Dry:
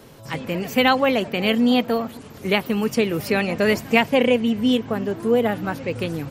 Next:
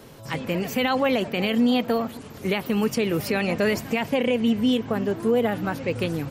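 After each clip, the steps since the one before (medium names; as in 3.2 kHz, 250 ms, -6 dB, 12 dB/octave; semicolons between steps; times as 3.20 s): peak limiter -13 dBFS, peak gain reduction 11 dB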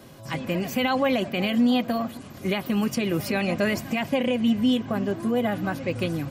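comb of notches 450 Hz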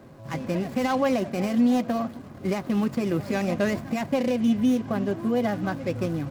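median filter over 15 samples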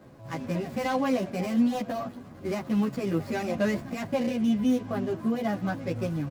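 endless flanger 11.3 ms -1.1 Hz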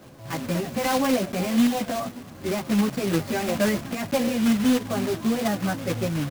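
block-companded coder 3-bit; trim +3.5 dB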